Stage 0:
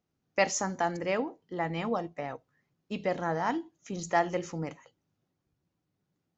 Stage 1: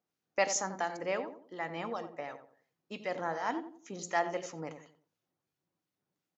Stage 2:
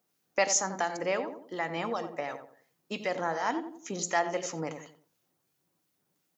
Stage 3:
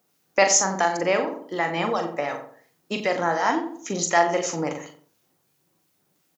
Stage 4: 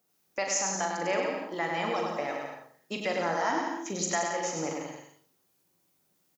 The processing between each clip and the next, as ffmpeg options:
-filter_complex "[0:a]highpass=f=460:p=1,acrossover=split=1500[a][b];[a]aeval=exprs='val(0)*(1-0.5/2+0.5/2*cos(2*PI*2.8*n/s))':c=same[c];[b]aeval=exprs='val(0)*(1-0.5/2-0.5/2*cos(2*PI*2.8*n/s))':c=same[d];[c][d]amix=inputs=2:normalize=0,asplit=2[e][f];[f]adelay=89,lowpass=f=970:p=1,volume=-8dB,asplit=2[g][h];[h]adelay=89,lowpass=f=970:p=1,volume=0.38,asplit=2[i][j];[j]adelay=89,lowpass=f=970:p=1,volume=0.38,asplit=2[k][l];[l]adelay=89,lowpass=f=970:p=1,volume=0.38[m];[g][i][k][m]amix=inputs=4:normalize=0[n];[e][n]amix=inputs=2:normalize=0"
-filter_complex "[0:a]highpass=87,highshelf=f=6.8k:g=9,asplit=2[a][b];[b]acompressor=threshold=-39dB:ratio=6,volume=3dB[c];[a][c]amix=inputs=2:normalize=0"
-filter_complex "[0:a]asplit=2[a][b];[b]adelay=41,volume=-7dB[c];[a][c]amix=inputs=2:normalize=0,volume=7.5dB"
-filter_complex "[0:a]highshelf=f=5.1k:g=4,alimiter=limit=-10dB:level=0:latency=1:release=411,asplit=2[a][b];[b]aecho=0:1:100|175|231.2|273.4|305.1:0.631|0.398|0.251|0.158|0.1[c];[a][c]amix=inputs=2:normalize=0,volume=-7.5dB"

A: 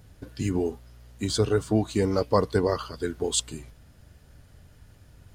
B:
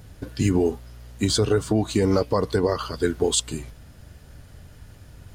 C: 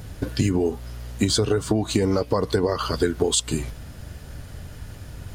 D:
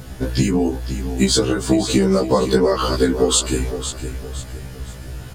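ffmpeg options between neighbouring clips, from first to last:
-af "alimiter=limit=-17dB:level=0:latency=1:release=125,volume=7dB"
-af "acompressor=threshold=-25dB:ratio=6,volume=7.5dB"
-af "aecho=1:1:512|1024|1536|2048:0.299|0.107|0.0387|0.0139,afftfilt=real='re*1.73*eq(mod(b,3),0)':imag='im*1.73*eq(mod(b,3),0)':win_size=2048:overlap=0.75,volume=7.5dB"

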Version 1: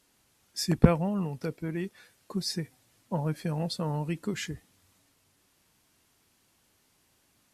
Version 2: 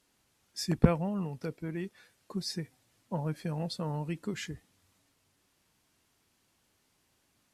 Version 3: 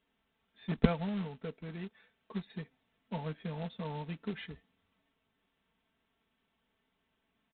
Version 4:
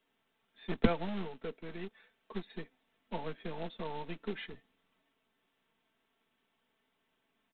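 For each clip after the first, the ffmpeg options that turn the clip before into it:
-af "highshelf=f=11k:g=-5.5,volume=-3.5dB"
-af "aecho=1:1:4.5:0.65,aresample=8000,acrusher=bits=3:mode=log:mix=0:aa=0.000001,aresample=44100,volume=-6dB"
-filter_complex "[0:a]highpass=f=51:w=0.5412,highpass=f=51:w=1.3066,acrossover=split=190|980[a][b][c];[a]aeval=exprs='abs(val(0))':c=same[d];[d][b][c]amix=inputs=3:normalize=0,volume=1.5dB"

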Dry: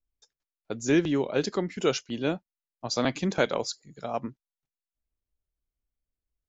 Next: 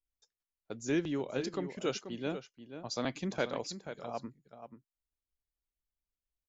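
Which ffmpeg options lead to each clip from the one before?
-filter_complex "[0:a]asplit=2[a][b];[b]adelay=484,volume=-10dB,highshelf=f=4k:g=-10.9[c];[a][c]amix=inputs=2:normalize=0,volume=-8.5dB"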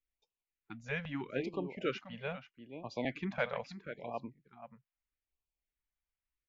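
-af "lowpass=f=2.3k:t=q:w=1.8,afftfilt=real='re*(1-between(b*sr/1024,300*pow(1700/300,0.5+0.5*sin(2*PI*0.78*pts/sr))/1.41,300*pow(1700/300,0.5+0.5*sin(2*PI*0.78*pts/sr))*1.41))':imag='im*(1-between(b*sr/1024,300*pow(1700/300,0.5+0.5*sin(2*PI*0.78*pts/sr))/1.41,300*pow(1700/300,0.5+0.5*sin(2*PI*0.78*pts/sr))*1.41))':win_size=1024:overlap=0.75,volume=-1.5dB"

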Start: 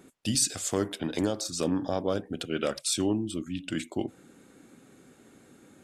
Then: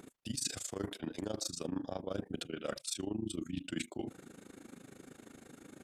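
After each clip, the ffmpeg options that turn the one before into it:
-af "areverse,acompressor=threshold=-36dB:ratio=12,areverse,tremolo=f=26:d=0.889,volume=5dB"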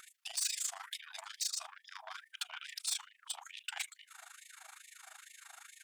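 -af "asoftclip=type=tanh:threshold=-37dB,afftfilt=real='re*gte(b*sr/1024,610*pow(1800/610,0.5+0.5*sin(2*PI*2.3*pts/sr)))':imag='im*gte(b*sr/1024,610*pow(1800/610,0.5+0.5*sin(2*PI*2.3*pts/sr)))':win_size=1024:overlap=0.75,volume=8dB"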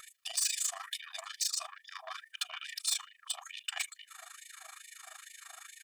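-af "aecho=1:1:1.7:0.74,volume=2dB"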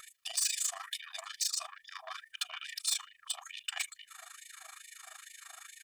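-af "asubboost=boost=4:cutoff=180"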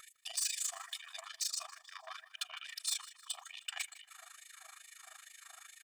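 -af "aecho=1:1:156|312|468|624:0.126|0.0554|0.0244|0.0107,volume=-4dB"

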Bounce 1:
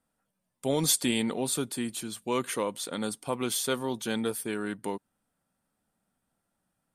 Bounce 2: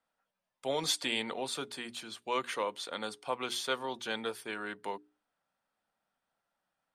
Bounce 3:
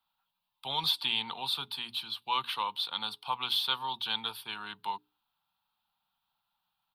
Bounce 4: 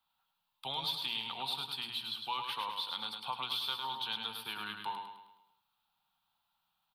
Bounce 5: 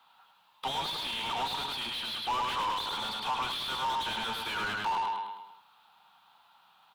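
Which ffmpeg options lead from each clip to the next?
-filter_complex "[0:a]acrossover=split=490 5500:gain=0.2 1 0.141[a][b][c];[a][b][c]amix=inputs=3:normalize=0,bandreject=f=60:t=h:w=6,bandreject=f=120:t=h:w=6,bandreject=f=180:t=h:w=6,bandreject=f=240:t=h:w=6,bandreject=f=300:t=h:w=6,bandreject=f=360:t=h:w=6,bandreject=f=420:t=h:w=6"
-filter_complex "[0:a]firequalizer=gain_entry='entry(140,0);entry(280,-13);entry(580,-17);entry(870,5);entry(1900,-10);entry(2700,5);entry(3900,10);entry(6600,-19);entry(12000,7)':delay=0.05:min_phase=1,acrossover=split=170|1900[a][b][c];[c]alimiter=limit=-20.5dB:level=0:latency=1:release=214[d];[a][b][d]amix=inputs=3:normalize=0,volume=1.5dB"
-filter_complex "[0:a]acompressor=threshold=-37dB:ratio=2.5,asplit=2[a][b];[b]aecho=0:1:105|210|315|420|525|630:0.531|0.25|0.117|0.0551|0.0259|0.0122[c];[a][c]amix=inputs=2:normalize=0"
-filter_complex "[0:a]asplit=2[a][b];[b]highpass=f=720:p=1,volume=31dB,asoftclip=type=tanh:threshold=-21.5dB[c];[a][c]amix=inputs=2:normalize=0,lowpass=f=1.4k:p=1,volume=-6dB"

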